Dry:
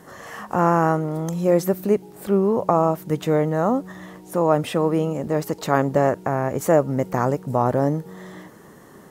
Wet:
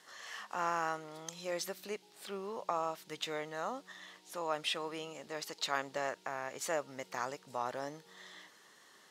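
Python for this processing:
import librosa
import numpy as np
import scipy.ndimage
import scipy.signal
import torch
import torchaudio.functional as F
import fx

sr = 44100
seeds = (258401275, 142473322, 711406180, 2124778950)

y = fx.bandpass_q(x, sr, hz=3900.0, q=1.5)
y = F.gain(torch.from_numpy(y), 1.0).numpy()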